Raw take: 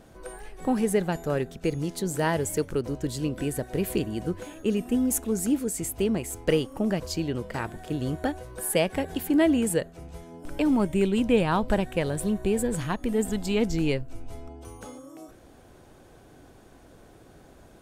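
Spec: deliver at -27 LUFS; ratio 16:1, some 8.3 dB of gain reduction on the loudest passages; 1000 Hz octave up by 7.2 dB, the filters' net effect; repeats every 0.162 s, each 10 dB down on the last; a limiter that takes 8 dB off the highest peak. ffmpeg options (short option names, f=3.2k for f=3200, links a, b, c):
-af "equalizer=f=1k:t=o:g=9,acompressor=threshold=-23dB:ratio=16,alimiter=limit=-20.5dB:level=0:latency=1,aecho=1:1:162|324|486|648:0.316|0.101|0.0324|0.0104,volume=4.5dB"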